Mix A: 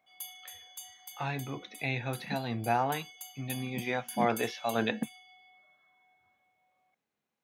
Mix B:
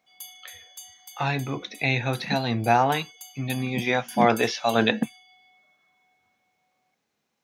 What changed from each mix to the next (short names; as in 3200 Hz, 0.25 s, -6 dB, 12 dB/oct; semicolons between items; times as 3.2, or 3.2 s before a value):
speech +8.5 dB; master: add bell 5300 Hz +6.5 dB 1 oct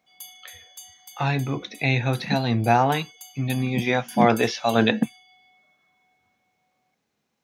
master: add low shelf 300 Hz +5.5 dB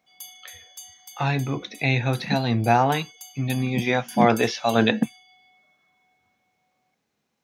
background: add bell 5600 Hz +8 dB 0.24 oct